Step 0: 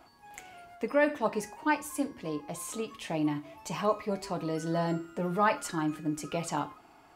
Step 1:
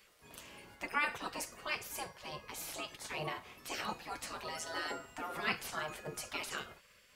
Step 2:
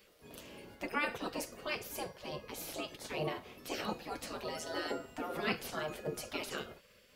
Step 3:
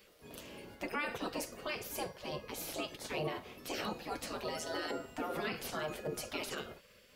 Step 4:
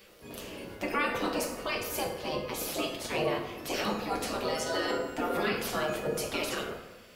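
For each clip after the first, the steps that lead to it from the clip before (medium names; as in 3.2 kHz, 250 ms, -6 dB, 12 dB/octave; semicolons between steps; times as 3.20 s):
spectral gate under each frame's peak -15 dB weak; trim +4 dB
graphic EQ 250/500/1000/2000/8000 Hz +4/+5/-5/-4/-6 dB; trim +2.5 dB
peak limiter -29 dBFS, peak gain reduction 9.5 dB; trim +1.5 dB
plate-style reverb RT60 1.1 s, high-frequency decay 0.55×, DRR 2 dB; trim +5.5 dB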